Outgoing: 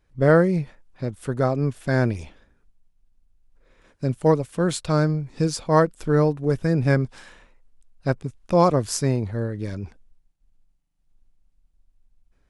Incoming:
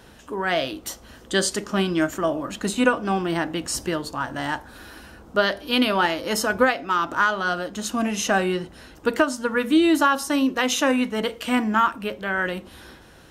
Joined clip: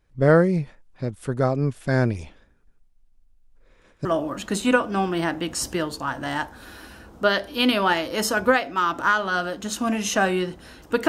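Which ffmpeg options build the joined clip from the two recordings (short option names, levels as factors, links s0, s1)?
-filter_complex "[0:a]asettb=1/sr,asplit=3[s0][s1][s2];[s0]atrim=end=2.524[s3];[s1]atrim=start=2.52:end=4.05,asetpts=PTS-STARTPTS,afade=t=in:d=0.004:c=qsin,afade=t=out:st=1.526:d=0.004:c=qsin,aecho=1:1:150:0.501,atrim=end_sample=67473[s4];[s2]atrim=start=4.046[s5];[s3][s4]acrossfade=d=0.004:c1=hsin:c2=qsin[s6];[s6][s5]acrossfade=d=0.004:c1=qsin:c2=hsin,apad=whole_dur=11.08,atrim=end=11.08,atrim=end=4.052[s7];[1:a]atrim=start=2.178:end=9.21[s8];[s7][s8]acrossfade=d=0.004:c1=hsin:c2=hsin"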